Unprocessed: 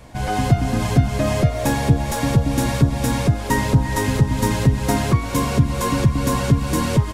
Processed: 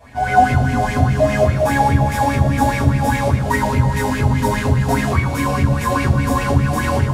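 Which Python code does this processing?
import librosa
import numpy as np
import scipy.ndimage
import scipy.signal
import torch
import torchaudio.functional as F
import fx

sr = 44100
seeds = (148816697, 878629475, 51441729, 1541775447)

y = fx.rev_fdn(x, sr, rt60_s=0.86, lf_ratio=1.3, hf_ratio=0.75, size_ms=71.0, drr_db=-7.5)
y = fx.bell_lfo(y, sr, hz=4.9, low_hz=640.0, high_hz=2300.0, db=15)
y = F.gain(torch.from_numpy(y), -10.0).numpy()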